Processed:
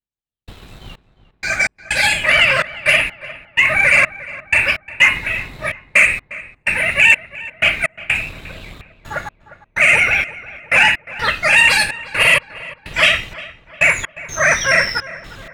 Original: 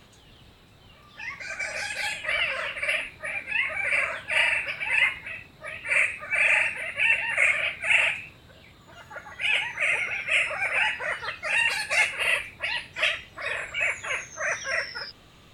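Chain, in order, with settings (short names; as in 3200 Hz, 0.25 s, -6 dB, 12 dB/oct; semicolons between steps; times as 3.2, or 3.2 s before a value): octaver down 2 oct, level +2 dB; in parallel at 0 dB: limiter -18.5 dBFS, peak gain reduction 9.5 dB; on the sum: sample leveller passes 1; step gate "..xx..x.xxx.x" 63 bpm -60 dB; darkening echo 0.354 s, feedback 53%, low-pass 2000 Hz, level -16 dB; gain +5.5 dB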